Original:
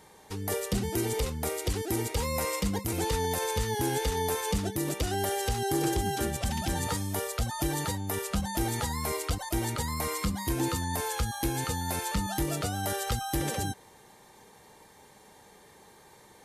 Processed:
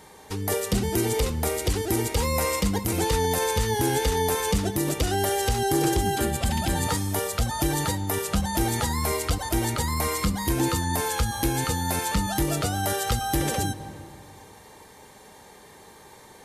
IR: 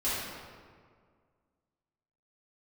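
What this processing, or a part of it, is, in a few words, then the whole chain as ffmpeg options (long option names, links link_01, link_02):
ducked reverb: -filter_complex "[0:a]asettb=1/sr,asplit=3[link_01][link_02][link_03];[link_01]atrim=end=6.104[link_04];[link_02]atrim=start=6.1:end=6.84,asetpts=PTS-STARTPTS,afade=type=in:duration=0.004:curve=qsin,afade=type=out:start_time=0.736:duration=0.004:curve=qsin,bandreject=frequency=5800:width=6.2[link_05];[link_03]atrim=start=6.836[link_06];[link_04][link_05]acrossfade=duration=0.004:curve1=hsin:curve2=qsin[link_07];[link_07][link_06]acrossfade=duration=0.004:curve1=qsin:curve2=hsin,asplit=3[link_08][link_09][link_10];[1:a]atrim=start_sample=2205[link_11];[link_09][link_11]afir=irnorm=-1:irlink=0[link_12];[link_10]apad=whole_len=725308[link_13];[link_12][link_13]sidechaincompress=threshold=-36dB:ratio=8:attack=6:release=181,volume=-16.5dB[link_14];[link_08][link_14]amix=inputs=2:normalize=0,volume=5dB"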